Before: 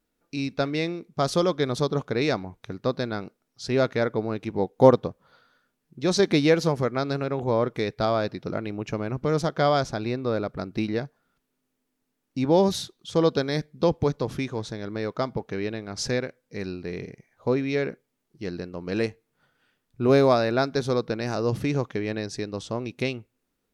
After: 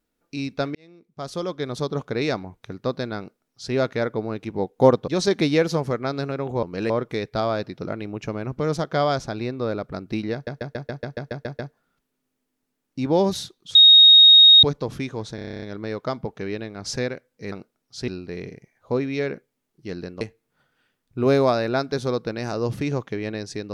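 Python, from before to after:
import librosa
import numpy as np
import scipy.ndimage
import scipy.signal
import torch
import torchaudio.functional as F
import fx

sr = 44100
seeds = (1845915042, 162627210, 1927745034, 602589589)

y = fx.edit(x, sr, fx.fade_in_span(start_s=0.75, length_s=1.34),
    fx.duplicate(start_s=3.18, length_s=0.56, to_s=16.64),
    fx.cut(start_s=5.08, length_s=0.92),
    fx.stutter(start_s=10.98, slice_s=0.14, count=10),
    fx.bleep(start_s=13.14, length_s=0.88, hz=3740.0, db=-7.0),
    fx.stutter(start_s=14.74, slice_s=0.03, count=10),
    fx.move(start_s=18.77, length_s=0.27, to_s=7.55), tone=tone)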